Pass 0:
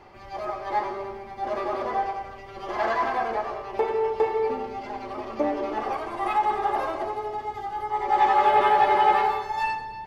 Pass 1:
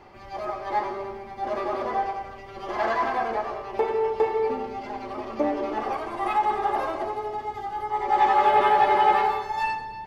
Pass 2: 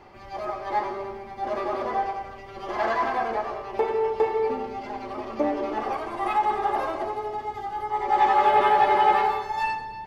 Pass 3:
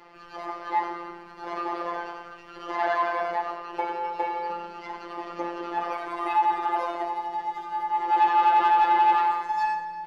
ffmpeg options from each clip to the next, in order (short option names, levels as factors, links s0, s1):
-af "equalizer=f=230:w=1.5:g=2"
-af anull
-filter_complex "[0:a]afftfilt=real='hypot(re,im)*cos(PI*b)':imag='0':win_size=1024:overlap=0.75,asplit=2[s0][s1];[s1]highpass=f=720:p=1,volume=3.55,asoftclip=type=tanh:threshold=0.355[s2];[s0][s2]amix=inputs=2:normalize=0,lowpass=f=4900:p=1,volume=0.501,volume=0.841"